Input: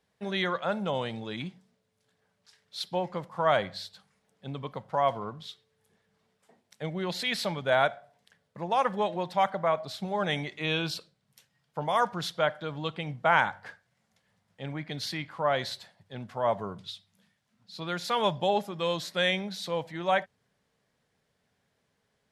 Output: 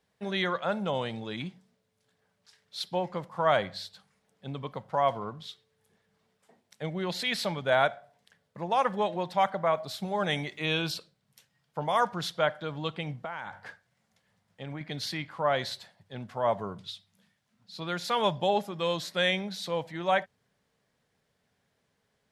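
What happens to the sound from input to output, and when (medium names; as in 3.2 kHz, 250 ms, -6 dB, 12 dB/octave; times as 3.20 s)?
9.73–10.92 s: treble shelf 11 kHz +11.5 dB
13.24–14.81 s: compression 8:1, threshold -33 dBFS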